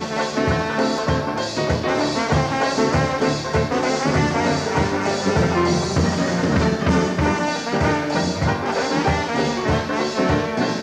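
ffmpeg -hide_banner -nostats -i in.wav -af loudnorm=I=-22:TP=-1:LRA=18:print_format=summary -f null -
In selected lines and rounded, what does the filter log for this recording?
Input Integrated:    -20.3 LUFS
Input True Peak:      -8.9 dBTP
Input LRA:             1.5 LU
Input Threshold:     -30.3 LUFS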